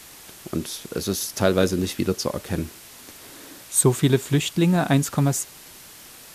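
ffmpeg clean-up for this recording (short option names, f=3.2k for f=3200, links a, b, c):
-af "afwtdn=0.0071"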